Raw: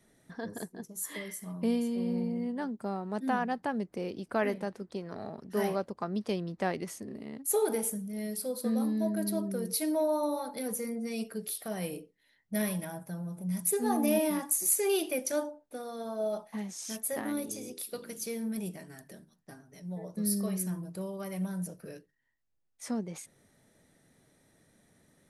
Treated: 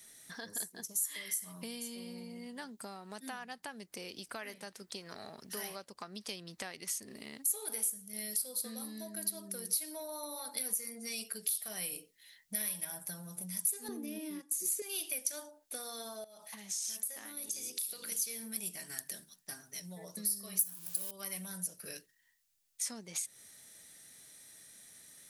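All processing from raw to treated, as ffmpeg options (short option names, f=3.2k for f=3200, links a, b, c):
-filter_complex "[0:a]asettb=1/sr,asplit=3[a][b][c];[a]atrim=end=13.884[d];[b]atrim=start=13.88:end=14.82,asetpts=PTS-STARTPTS,afade=t=in:d=0.004:c=qsin,afade=t=out:st=0.936:d=0.004:c=qsin,agate=range=-11dB:threshold=-36dB:ratio=16:release=100:detection=peak,lowpass=f=3.6k:p=1,lowshelf=f=550:t=q:w=3:g=10[e];[c]atrim=start=14.816[f];[d][e]acrossfade=d=0.004:c1=hsin:c2=qsin[g];[g][f]acrossfade=d=0.004:c1=qsin:c2=hsin,asettb=1/sr,asplit=3[h][i][j];[h]atrim=end=16.244[k];[i]atrim=start=16.24:end=18.12,asetpts=PTS-STARTPTS,afade=t=in:d=0.004:c=qsin,afade=t=out:st=1.876:d=0.004:c=qsin,acompressor=threshold=-44dB:ratio=20:attack=3.2:release=140:knee=1:detection=peak,aecho=1:1:337:0.0631,atrim=end_sample=82908[l];[j]atrim=start=18.116[m];[k][l]acrossfade=d=0.004:c1=hsin:c2=qsin[n];[n][m]acrossfade=d=0.004:c1=qsin:c2=hsin,asettb=1/sr,asplit=3[o][p][q];[o]atrim=end=20.594[r];[p]atrim=start=20.59:end=21.11,asetpts=PTS-STARTPTS,afade=t=in:d=0.004:c=qsin,afade=t=out:st=0.516:d=0.004:c=qsin,aeval=exprs='val(0)+0.5*0.0075*sgn(val(0))':c=same,aemphasis=mode=production:type=50fm,bandreject=f=2k:w=10[s];[q]atrim=start=21.106[t];[r][s]acrossfade=d=0.004:c1=hsin:c2=qsin[u];[u][t]acrossfade=d=0.004:c1=qsin:c2=hsin,tiltshelf=f=1.1k:g=-7,acompressor=threshold=-45dB:ratio=4,highshelf=f=2.8k:g=11.5"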